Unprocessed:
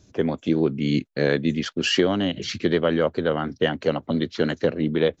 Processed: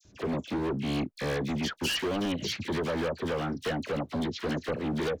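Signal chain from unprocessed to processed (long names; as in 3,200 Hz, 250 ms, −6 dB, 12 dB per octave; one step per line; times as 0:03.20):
hard clipping −25 dBFS, distortion −5 dB
all-pass dispersion lows, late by 50 ms, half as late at 2,000 Hz
level −2 dB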